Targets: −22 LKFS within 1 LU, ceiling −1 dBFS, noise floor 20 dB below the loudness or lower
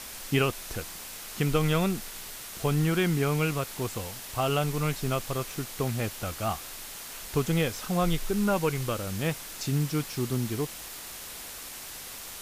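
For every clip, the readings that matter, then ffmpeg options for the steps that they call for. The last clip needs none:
background noise floor −42 dBFS; target noise floor −50 dBFS; integrated loudness −30.0 LKFS; sample peak −12.5 dBFS; target loudness −22.0 LKFS
→ -af "afftdn=noise_reduction=8:noise_floor=-42"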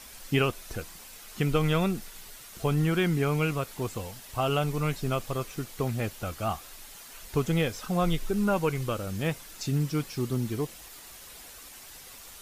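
background noise floor −47 dBFS; target noise floor −50 dBFS
→ -af "afftdn=noise_reduction=6:noise_floor=-47"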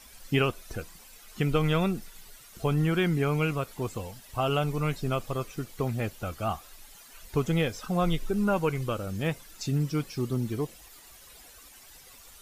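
background noise floor −52 dBFS; integrated loudness −29.5 LKFS; sample peak −12.5 dBFS; target loudness −22.0 LKFS
→ -af "volume=7.5dB"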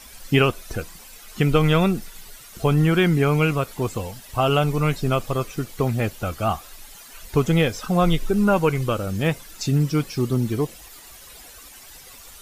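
integrated loudness −22.0 LKFS; sample peak −5.0 dBFS; background noise floor −44 dBFS

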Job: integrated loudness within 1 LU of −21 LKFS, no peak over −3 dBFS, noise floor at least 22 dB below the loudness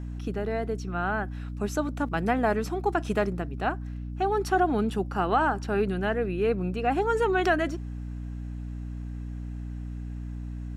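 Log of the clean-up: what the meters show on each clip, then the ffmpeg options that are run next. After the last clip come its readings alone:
mains hum 60 Hz; hum harmonics up to 300 Hz; level of the hum −33 dBFS; integrated loudness −28.5 LKFS; sample peak −11.5 dBFS; target loudness −21.0 LKFS
→ -af "bandreject=frequency=60:width_type=h:width=6,bandreject=frequency=120:width_type=h:width=6,bandreject=frequency=180:width_type=h:width=6,bandreject=frequency=240:width_type=h:width=6,bandreject=frequency=300:width_type=h:width=6"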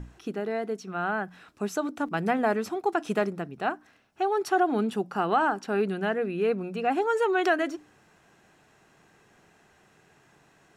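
mains hum none found; integrated loudness −28.0 LKFS; sample peak −12.5 dBFS; target loudness −21.0 LKFS
→ -af "volume=7dB"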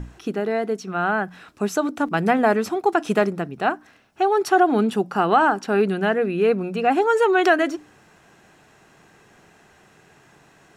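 integrated loudness −21.0 LKFS; sample peak −5.5 dBFS; background noise floor −54 dBFS

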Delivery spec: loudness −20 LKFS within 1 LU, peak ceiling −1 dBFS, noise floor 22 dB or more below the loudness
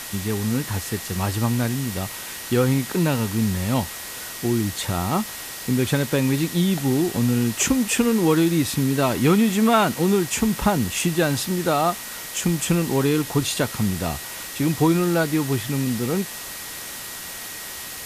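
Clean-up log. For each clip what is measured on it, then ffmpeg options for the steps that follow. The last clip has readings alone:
interfering tone 1,900 Hz; level of the tone −43 dBFS; background noise floor −34 dBFS; target noise floor −45 dBFS; integrated loudness −22.5 LKFS; sample peak −6.5 dBFS; target loudness −20.0 LKFS
→ -af "bandreject=frequency=1900:width=30"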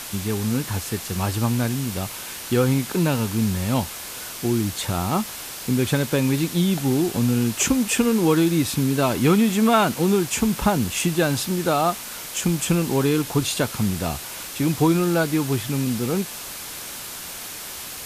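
interfering tone none found; background noise floor −35 dBFS; target noise floor −45 dBFS
→ -af "afftdn=noise_reduction=10:noise_floor=-35"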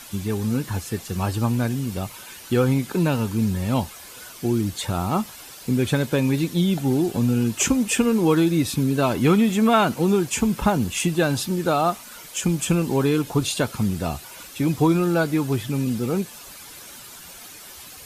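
background noise floor −42 dBFS; target noise floor −44 dBFS
→ -af "afftdn=noise_reduction=6:noise_floor=-42"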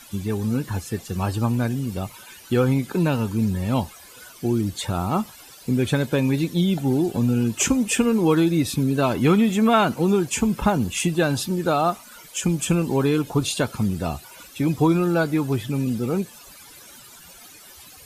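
background noise floor −46 dBFS; integrated loudness −22.5 LKFS; sample peak −6.0 dBFS; target loudness −20.0 LKFS
→ -af "volume=2.5dB"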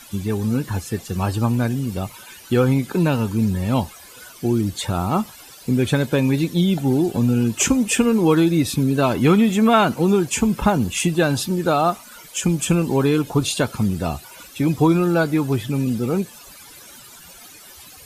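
integrated loudness −20.0 LKFS; sample peak −3.5 dBFS; background noise floor −43 dBFS

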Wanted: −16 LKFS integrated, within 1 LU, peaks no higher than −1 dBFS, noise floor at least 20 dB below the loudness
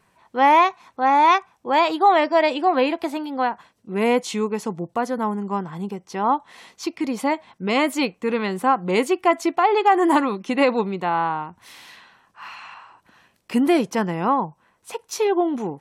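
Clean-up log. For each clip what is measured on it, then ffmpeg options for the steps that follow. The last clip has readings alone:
integrated loudness −21.0 LKFS; sample peak −6.5 dBFS; target loudness −16.0 LKFS
→ -af "volume=5dB"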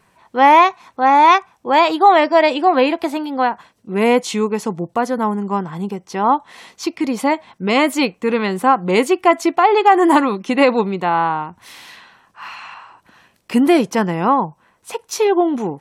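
integrated loudness −16.0 LKFS; sample peak −1.5 dBFS; background noise floor −60 dBFS

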